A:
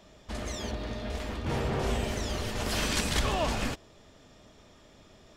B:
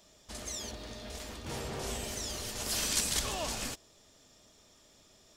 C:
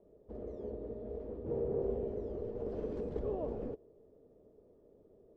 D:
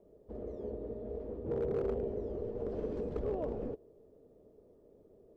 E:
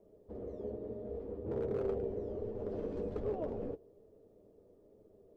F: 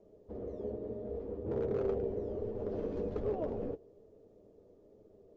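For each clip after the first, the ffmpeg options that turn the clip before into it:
ffmpeg -i in.wav -af "bass=frequency=250:gain=-3,treble=frequency=4000:gain=14,volume=-8dB" out.wav
ffmpeg -i in.wav -af "lowpass=frequency=450:width_type=q:width=4.9,volume=-2dB" out.wav
ffmpeg -i in.wav -af "volume=29dB,asoftclip=hard,volume=-29dB,volume=1.5dB" out.wav
ffmpeg -i in.wav -af "flanger=delay=9.3:depth=1.3:regen=-34:speed=1.2:shape=sinusoidal,volume=2.5dB" out.wav
ffmpeg -i in.wav -af "volume=2dB" -ar 16000 -c:a libvorbis -b:a 96k out.ogg

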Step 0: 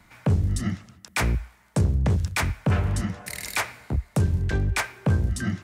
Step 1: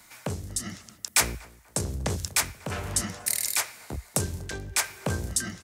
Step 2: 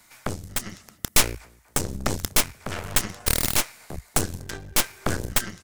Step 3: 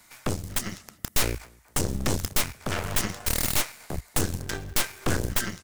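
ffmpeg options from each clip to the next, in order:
ffmpeg -i in.wav -filter_complex "[0:a]tremolo=f=0.97:d=0.52,bass=frequency=250:gain=-10,treble=frequency=4000:gain=14,asplit=2[link_01][link_02];[link_02]adelay=241,lowpass=frequency=1300:poles=1,volume=-20dB,asplit=2[link_03][link_04];[link_04]adelay=241,lowpass=frequency=1300:poles=1,volume=0.44,asplit=2[link_05][link_06];[link_06]adelay=241,lowpass=frequency=1300:poles=1,volume=0.44[link_07];[link_01][link_03][link_05][link_07]amix=inputs=4:normalize=0" out.wav
ffmpeg -i in.wav -af "aeval=exprs='0.596*(cos(1*acos(clip(val(0)/0.596,-1,1)))-cos(1*PI/2))+0.266*(cos(8*acos(clip(val(0)/0.596,-1,1)))-cos(8*PI/2))':channel_layout=same,volume=-2dB" out.wav
ffmpeg -i in.wav -filter_complex "[0:a]asplit=2[link_01][link_02];[link_02]acrusher=bits=6:mix=0:aa=0.000001,volume=-7dB[link_03];[link_01][link_03]amix=inputs=2:normalize=0,volume=15.5dB,asoftclip=hard,volume=-15.5dB" out.wav

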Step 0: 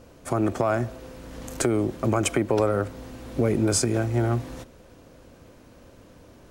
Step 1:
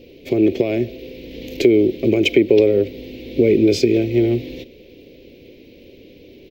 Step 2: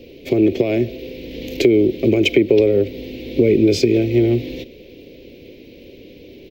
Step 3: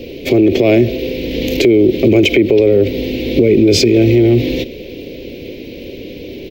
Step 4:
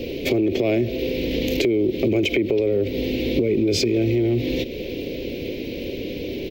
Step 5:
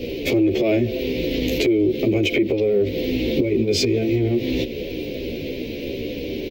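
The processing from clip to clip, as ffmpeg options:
ffmpeg -i in.wav -af "firequalizer=gain_entry='entry(120,0);entry(400,14);entry(760,-10);entry(1300,-24);entry(2200,12);entry(3800,11);entry(8900,-22);entry(15000,9)':delay=0.05:min_phase=1" out.wav
ffmpeg -i in.wav -filter_complex "[0:a]acrossover=split=170[link_01][link_02];[link_02]acompressor=threshold=-19dB:ratio=1.5[link_03];[link_01][link_03]amix=inputs=2:normalize=0,volume=3dB" out.wav
ffmpeg -i in.wav -af "alimiter=level_in=13dB:limit=-1dB:release=50:level=0:latency=1,volume=-1dB" out.wav
ffmpeg -i in.wav -af "acompressor=threshold=-22dB:ratio=2.5" out.wav
ffmpeg -i in.wav -filter_complex "[0:a]asplit=2[link_01][link_02];[link_02]adelay=12,afreqshift=-2.9[link_03];[link_01][link_03]amix=inputs=2:normalize=1,volume=4dB" out.wav

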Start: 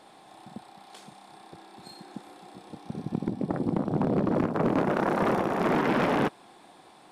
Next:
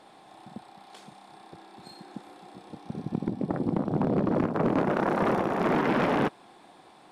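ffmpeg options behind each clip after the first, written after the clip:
ffmpeg -i in.wav -af "highshelf=frequency=6200:gain=-5.5" out.wav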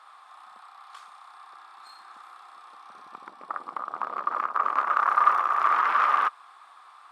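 ffmpeg -i in.wav -af "highpass=frequency=1200:width_type=q:width=9.9,volume=-2.5dB" out.wav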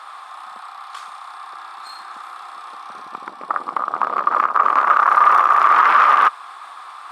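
ffmpeg -i in.wav -af "areverse,acompressor=mode=upward:threshold=-42dB:ratio=2.5,areverse,alimiter=level_in=13.5dB:limit=-1dB:release=50:level=0:latency=1,volume=-2dB" out.wav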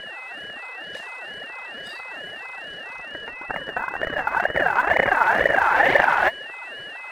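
ffmpeg -i in.wav -af "aphaser=in_gain=1:out_gain=1:delay=5:decay=0.64:speed=2:type=triangular,aeval=exprs='val(0)+0.0447*sin(2*PI*2300*n/s)':channel_layout=same,aeval=exprs='val(0)*sin(2*PI*450*n/s+450*0.45/2.2*sin(2*PI*2.2*n/s))':channel_layout=same,volume=-4.5dB" out.wav

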